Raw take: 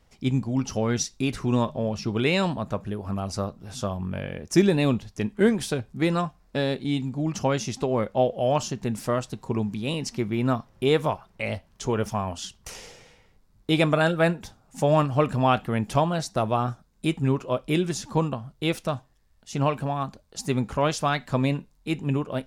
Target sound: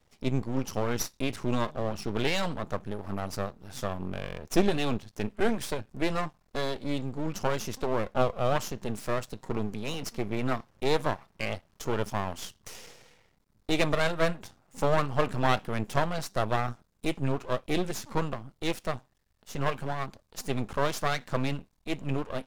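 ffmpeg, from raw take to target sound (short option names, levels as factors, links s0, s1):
-af "highpass=f=71:p=1,aeval=exprs='max(val(0),0)':c=same"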